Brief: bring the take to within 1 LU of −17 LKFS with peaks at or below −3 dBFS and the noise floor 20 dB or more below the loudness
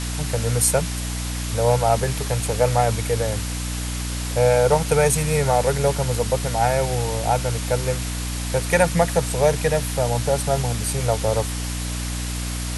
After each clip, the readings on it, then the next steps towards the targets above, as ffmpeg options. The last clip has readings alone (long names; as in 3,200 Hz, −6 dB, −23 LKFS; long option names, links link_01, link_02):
mains hum 60 Hz; hum harmonics up to 300 Hz; level of the hum −25 dBFS; background noise floor −27 dBFS; target noise floor −42 dBFS; integrated loudness −21.5 LKFS; sample peak −3.5 dBFS; target loudness −17.0 LKFS
→ -af "bandreject=frequency=60:width_type=h:width=6,bandreject=frequency=120:width_type=h:width=6,bandreject=frequency=180:width_type=h:width=6,bandreject=frequency=240:width_type=h:width=6,bandreject=frequency=300:width_type=h:width=6"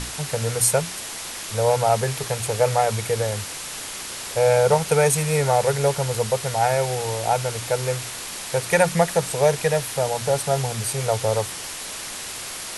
mains hum none found; background noise floor −33 dBFS; target noise floor −43 dBFS
→ -af "afftdn=noise_reduction=10:noise_floor=-33"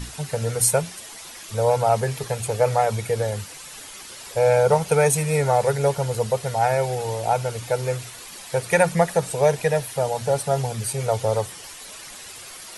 background noise floor −40 dBFS; target noise floor −42 dBFS
→ -af "afftdn=noise_reduction=6:noise_floor=-40"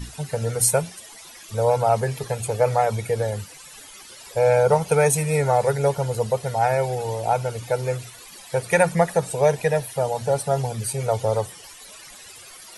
background noise floor −44 dBFS; integrated loudness −22.5 LKFS; sample peak −4.5 dBFS; target loudness −17.0 LKFS
→ -af "volume=5.5dB,alimiter=limit=-3dB:level=0:latency=1"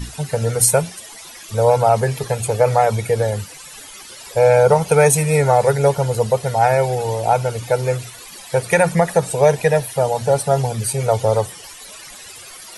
integrated loudness −17.0 LKFS; sample peak −3.0 dBFS; background noise floor −38 dBFS